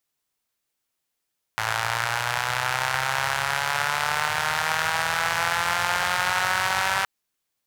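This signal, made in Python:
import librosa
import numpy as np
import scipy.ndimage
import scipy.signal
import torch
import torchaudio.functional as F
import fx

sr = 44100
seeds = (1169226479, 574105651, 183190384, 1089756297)

y = fx.engine_four_rev(sr, seeds[0], length_s=5.47, rpm=3300, resonances_hz=(110.0, 910.0, 1400.0), end_rpm=5800)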